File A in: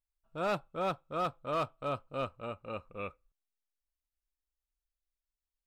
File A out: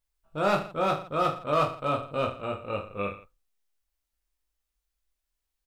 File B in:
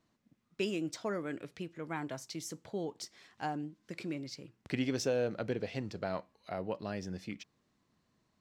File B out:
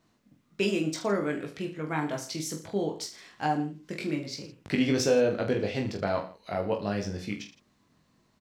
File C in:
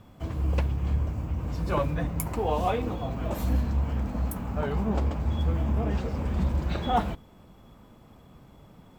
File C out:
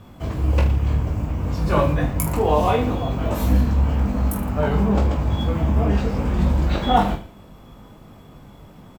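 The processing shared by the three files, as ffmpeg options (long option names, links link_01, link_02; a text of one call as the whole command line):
ffmpeg -i in.wav -af "aecho=1:1:20|45|76.25|115.3|164.1:0.631|0.398|0.251|0.158|0.1,volume=6dB" out.wav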